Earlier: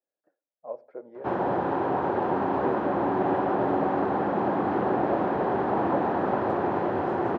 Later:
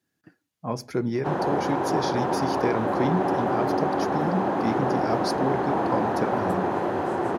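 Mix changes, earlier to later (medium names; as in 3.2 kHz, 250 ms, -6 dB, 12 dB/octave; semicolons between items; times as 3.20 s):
speech: remove ladder band-pass 600 Hz, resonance 75%; master: remove distance through air 220 m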